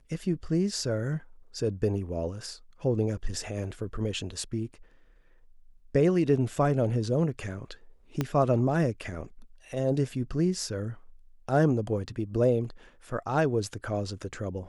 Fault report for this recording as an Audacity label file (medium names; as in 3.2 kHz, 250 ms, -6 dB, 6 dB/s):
8.210000	8.210000	pop -14 dBFS